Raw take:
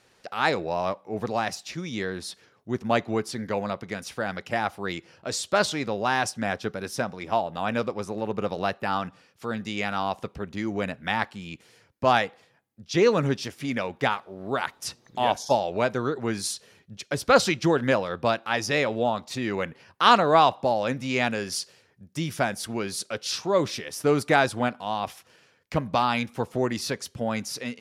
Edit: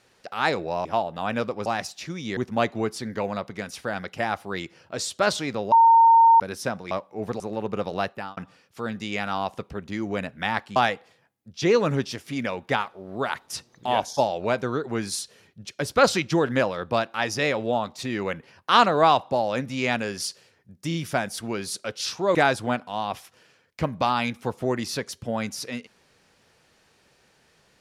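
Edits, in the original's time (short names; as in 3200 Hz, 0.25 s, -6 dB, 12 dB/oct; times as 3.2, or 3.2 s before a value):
0.85–1.34 swap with 7.24–8.05
2.05–2.7 cut
6.05–6.73 bleep 915 Hz -11 dBFS
8.72–9.02 fade out
11.41–12.08 cut
22.2 stutter 0.03 s, 3 plays
23.61–24.28 cut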